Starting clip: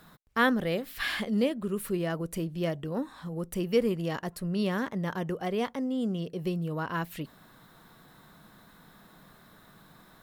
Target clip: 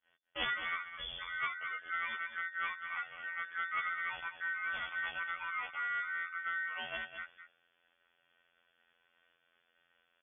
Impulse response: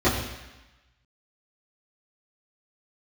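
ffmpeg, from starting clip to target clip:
-filter_complex "[0:a]acrossover=split=2600[s0][s1];[s1]acompressor=threshold=0.00398:ratio=4:attack=1:release=60[s2];[s0][s2]amix=inputs=2:normalize=0,aeval=exprs='val(0)*sin(2*PI*1800*n/s)':c=same,equalizer=f=1600:t=o:w=1.2:g=-3.5,asplit=2[s3][s4];[s4]acompressor=threshold=0.00447:ratio=6,volume=0.841[s5];[s3][s5]amix=inputs=2:normalize=0,afftfilt=real='hypot(re,im)*cos(PI*b)':imag='0':win_size=2048:overlap=0.75,agate=range=0.0224:threshold=0.00398:ratio=3:detection=peak,aeval=exprs='clip(val(0),-1,0.0282)':c=same,asplit=2[s6][s7];[s7]aecho=0:1:208:0.299[s8];[s6][s8]amix=inputs=2:normalize=0,lowpass=f=3000:t=q:w=0.5098,lowpass=f=3000:t=q:w=0.6013,lowpass=f=3000:t=q:w=0.9,lowpass=f=3000:t=q:w=2.563,afreqshift=-3500"

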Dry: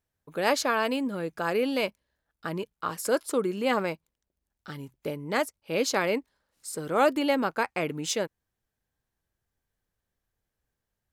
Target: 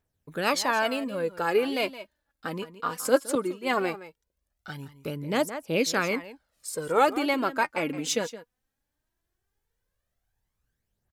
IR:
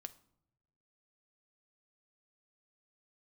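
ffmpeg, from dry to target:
-filter_complex "[0:a]aecho=1:1:167:0.178,aphaser=in_gain=1:out_gain=1:delay=4.3:decay=0.52:speed=0.18:type=triangular,asettb=1/sr,asplit=3[s0][s1][s2];[s0]atrim=end=3.354[s3];[s1]atrim=start=3.35:end=3.75,asetpts=PTS-STARTPTS,afade=t=in:d=0.004:c=qsin,afade=t=out:st=0.396:d=0.004:c=qsin,agate=range=0.0224:threshold=0.0631:ratio=3:detection=peak[s4];[s2]atrim=start=3.746[s5];[s3][s4]acrossfade=d=0.004:c1=hsin:c2=qsin[s6];[s6][s5]acrossfade=d=0.004:c1=qsin:c2=hsin"

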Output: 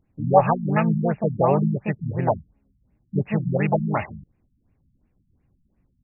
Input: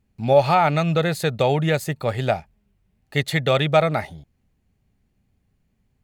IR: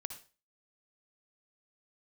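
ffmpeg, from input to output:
-filter_complex "[0:a]asplit=3[s0][s1][s2];[s1]asetrate=35002,aresample=44100,atempo=1.25992,volume=0.141[s3];[s2]asetrate=58866,aresample=44100,atempo=0.749154,volume=0.794[s4];[s0][s3][s4]amix=inputs=3:normalize=0,afftfilt=real='re*lt(b*sr/1024,250*pow(2900/250,0.5+0.5*sin(2*PI*2.8*pts/sr)))':imag='im*lt(b*sr/1024,250*pow(2900/250,0.5+0.5*sin(2*PI*2.8*pts/sr)))':win_size=1024:overlap=0.75,volume=0.891"

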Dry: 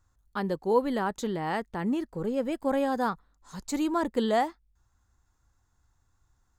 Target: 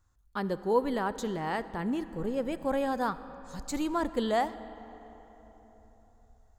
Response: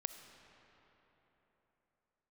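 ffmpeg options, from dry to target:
-filter_complex "[0:a]asplit=2[s0][s1];[s1]asubboost=boost=7:cutoff=110[s2];[1:a]atrim=start_sample=2205[s3];[s2][s3]afir=irnorm=-1:irlink=0,volume=1.41[s4];[s0][s4]amix=inputs=2:normalize=0,volume=0.398"

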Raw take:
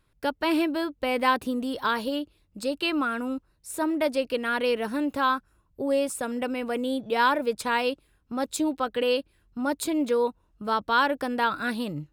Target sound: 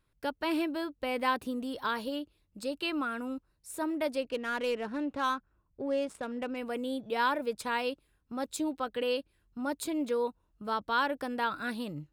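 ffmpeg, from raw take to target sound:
-filter_complex "[0:a]asettb=1/sr,asplit=3[s0][s1][s2];[s0]atrim=end=4.234[s3];[s1]atrim=start=4.23:end=6.57,asetpts=PTS-STARTPTS,afade=t=in:d=0.004:c=qsin,afade=t=out:st=2.336:d=0.004:c=qsin,adynamicsmooth=sensitivity=6.5:basefreq=2600[s4];[s2]atrim=start=6.566[s5];[s3][s4]acrossfade=d=0.004:c1=hsin:c2=qsin[s6];[s6][s5]acrossfade=d=0.004:c1=qsin:c2=hsin,volume=0.473"

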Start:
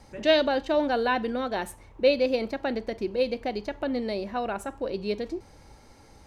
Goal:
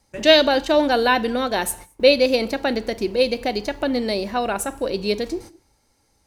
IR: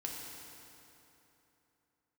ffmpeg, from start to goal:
-filter_complex "[0:a]crystalizer=i=2.5:c=0,agate=range=0.1:threshold=0.00708:ratio=16:detection=peak,asplit=2[s0][s1];[1:a]atrim=start_sample=2205,afade=t=out:st=0.28:d=0.01,atrim=end_sample=12789[s2];[s1][s2]afir=irnorm=-1:irlink=0,volume=0.158[s3];[s0][s3]amix=inputs=2:normalize=0,volume=1.88"

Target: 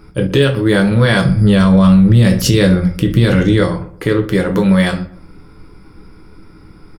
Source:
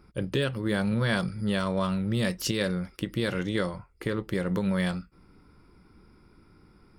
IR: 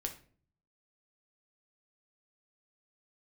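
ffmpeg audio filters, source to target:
-filter_complex "[0:a]asettb=1/sr,asplit=3[s0][s1][s2];[s0]atrim=end=1.254[s3];[s1]atrim=start=1.25:end=3.61,asetpts=PTS-STARTPTS,afade=t=in:d=0.004:c=qsin,afade=t=out:st=2.356:d=0.004:c=qsin,lowshelf=f=200:g=11[s4];[s2]atrim=start=3.606[s5];[s3][s4]acrossfade=d=0.004:c1=hsin:c2=qsin[s6];[s6][s5]acrossfade=d=0.004:c1=qsin:c2=hsin,asplit=2[s7][s8];[s8]adelay=121,lowpass=f=1400:p=1,volume=0.158,asplit=2[s9][s10];[s10]adelay=121,lowpass=f=1400:p=1,volume=0.33,asplit=2[s11][s12];[s12]adelay=121,lowpass=f=1400:p=1,volume=0.33[s13];[s7][s9][s11][s13]amix=inputs=4:normalize=0[s14];[1:a]atrim=start_sample=2205,atrim=end_sample=3528[s15];[s14][s15]afir=irnorm=-1:irlink=0,alimiter=level_in=5.96:limit=0.891:release=50:level=0:latency=1,volume=0.891"

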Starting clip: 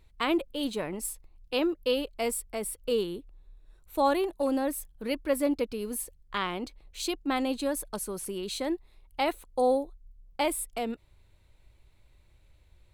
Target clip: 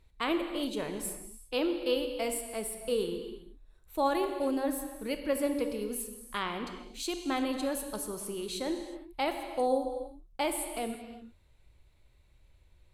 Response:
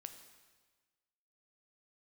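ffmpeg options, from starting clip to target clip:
-filter_complex "[1:a]atrim=start_sample=2205,afade=t=out:st=0.27:d=0.01,atrim=end_sample=12348,asetrate=26019,aresample=44100[s0];[0:a][s0]afir=irnorm=-1:irlink=0"

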